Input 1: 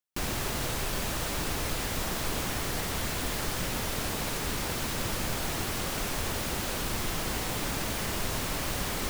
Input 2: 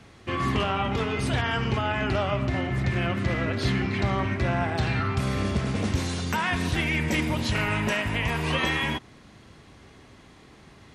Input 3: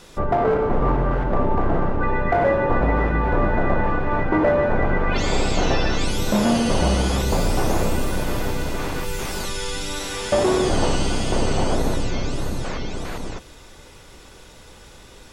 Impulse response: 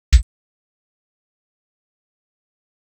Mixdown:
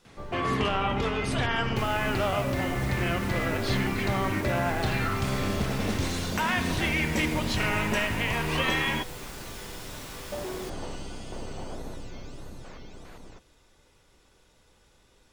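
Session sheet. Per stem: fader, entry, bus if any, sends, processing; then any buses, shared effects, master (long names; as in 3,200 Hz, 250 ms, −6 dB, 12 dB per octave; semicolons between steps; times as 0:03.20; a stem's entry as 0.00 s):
−10.5 dB, 1.60 s, no send, no processing
−0.5 dB, 0.05 s, no send, low-shelf EQ 130 Hz −6 dB
−17.0 dB, 0.00 s, no send, log-companded quantiser 8 bits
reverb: not used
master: no processing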